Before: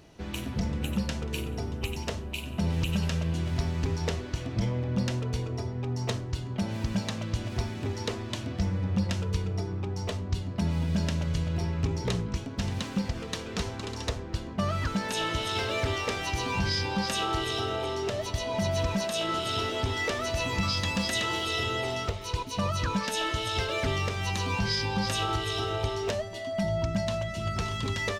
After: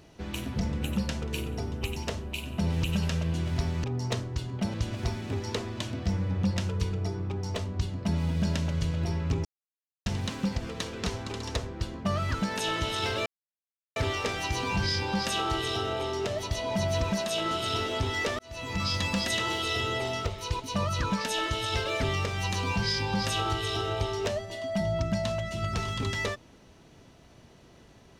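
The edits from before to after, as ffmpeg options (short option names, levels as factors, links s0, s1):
-filter_complex "[0:a]asplit=7[s0][s1][s2][s3][s4][s5][s6];[s0]atrim=end=3.842[s7];[s1]atrim=start=5.808:end=6.712[s8];[s2]atrim=start=7.268:end=11.98,asetpts=PTS-STARTPTS,afade=t=out:st=4.708:d=0.004:c=hsin[s9];[s3]atrim=start=11.98:end=12.59,asetpts=PTS-STARTPTS,volume=0[s10];[s4]atrim=start=12.59:end=15.79,asetpts=PTS-STARTPTS,afade=t=in:d=0.004:c=hsin,afade=t=out:st=3.196:d=0.004:c=hsin,apad=pad_dur=0.7[s11];[s5]atrim=start=15.79:end=20.22,asetpts=PTS-STARTPTS,afade=t=in:d=0.004:c=hsin,afade=t=out:st=4.426:d=0.004:c=hsin[s12];[s6]atrim=start=20.22,asetpts=PTS-STARTPTS,afade=t=in:d=0.53[s13];[s7][s8]acrossfade=d=0.004:c1=hsin:c2=hsin[s14];[s9][s10][s11][s12][s13]concat=n=5:v=0:a=1[s15];[s14][s15]acrossfade=d=0.004:c1=hsin:c2=hsin"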